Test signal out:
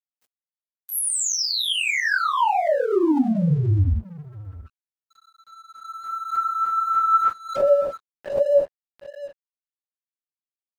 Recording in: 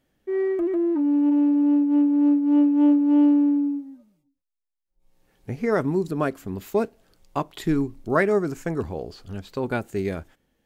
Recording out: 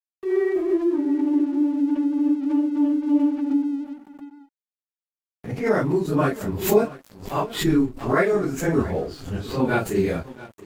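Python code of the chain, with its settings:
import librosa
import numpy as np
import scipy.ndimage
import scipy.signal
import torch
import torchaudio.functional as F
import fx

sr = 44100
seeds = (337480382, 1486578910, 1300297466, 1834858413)

y = fx.phase_scramble(x, sr, seeds[0], window_ms=100)
y = fx.rider(y, sr, range_db=5, speed_s=0.5)
y = y + 10.0 ** (-17.0 / 20.0) * np.pad(y, (int(676 * sr / 1000.0), 0))[:len(y)]
y = np.sign(y) * np.maximum(np.abs(y) - 10.0 ** (-48.5 / 20.0), 0.0)
y = fx.pre_swell(y, sr, db_per_s=110.0)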